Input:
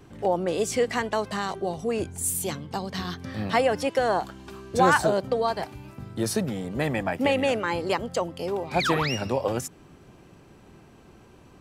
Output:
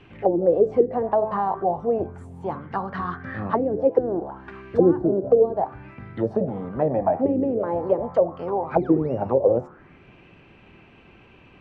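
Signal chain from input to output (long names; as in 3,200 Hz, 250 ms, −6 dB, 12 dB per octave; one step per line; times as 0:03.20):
hum removal 72.32 Hz, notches 34
envelope-controlled low-pass 340–2,800 Hz down, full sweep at −19.5 dBFS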